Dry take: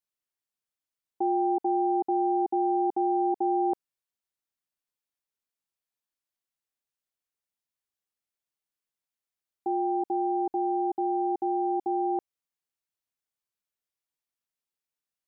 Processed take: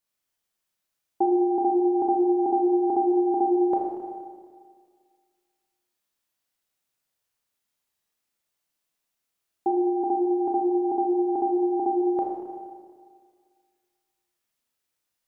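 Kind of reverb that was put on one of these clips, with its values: Schroeder reverb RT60 1.9 s, combs from 26 ms, DRR -1.5 dB; trim +6 dB

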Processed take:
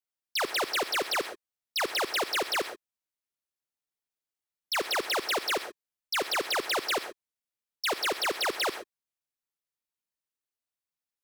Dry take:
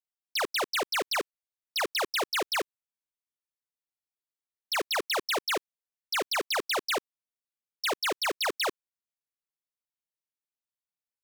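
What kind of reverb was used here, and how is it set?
gated-style reverb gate 150 ms rising, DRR 10.5 dB

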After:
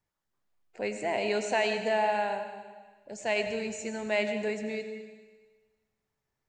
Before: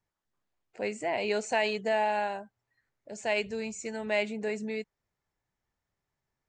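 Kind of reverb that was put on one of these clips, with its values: algorithmic reverb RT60 1.4 s, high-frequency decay 1×, pre-delay 55 ms, DRR 7.5 dB

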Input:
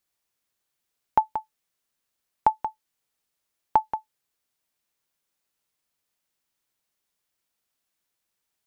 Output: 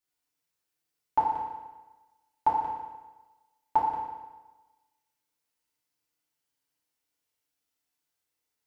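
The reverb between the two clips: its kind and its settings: FDN reverb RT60 1.2 s, low-frequency decay 0.95×, high-frequency decay 0.95×, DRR -7 dB; trim -11 dB

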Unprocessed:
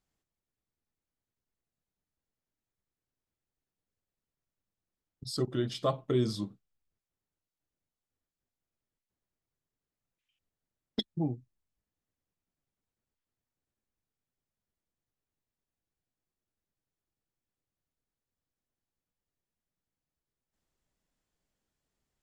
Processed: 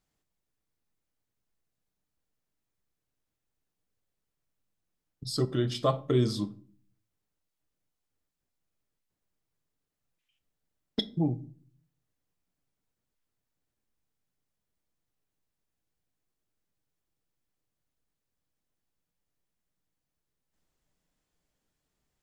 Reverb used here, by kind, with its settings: simulated room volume 380 m³, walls furnished, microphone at 0.45 m; trim +3 dB

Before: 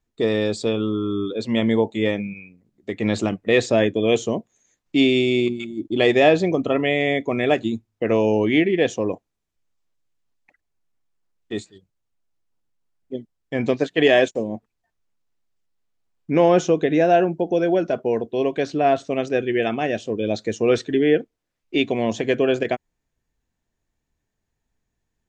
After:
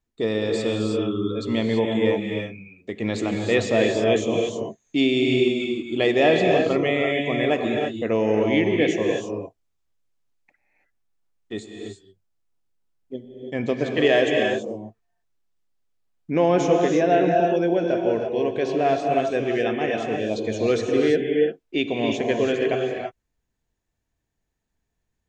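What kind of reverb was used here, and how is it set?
gated-style reverb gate 360 ms rising, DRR 1.5 dB; trim -3.5 dB

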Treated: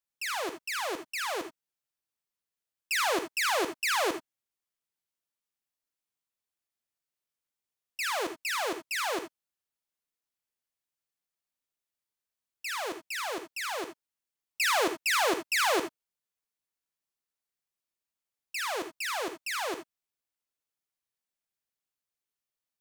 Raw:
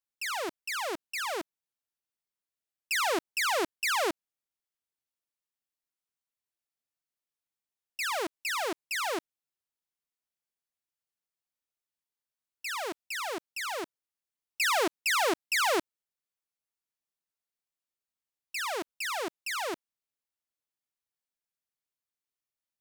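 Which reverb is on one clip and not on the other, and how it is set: gated-style reverb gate 100 ms rising, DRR 8 dB

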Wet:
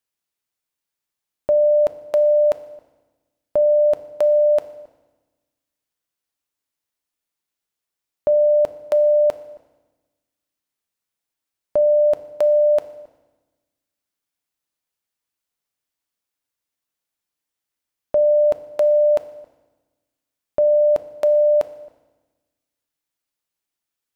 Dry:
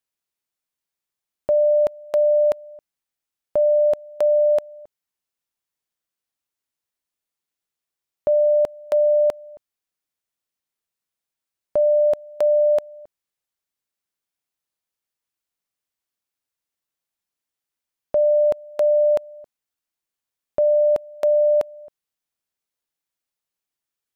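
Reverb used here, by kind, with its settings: FDN reverb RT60 1.2 s, low-frequency decay 1.35×, high-frequency decay 0.95×, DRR 11 dB; trim +1.5 dB

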